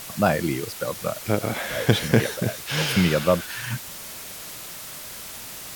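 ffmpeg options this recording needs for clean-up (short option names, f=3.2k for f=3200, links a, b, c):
-af "afwtdn=0.014"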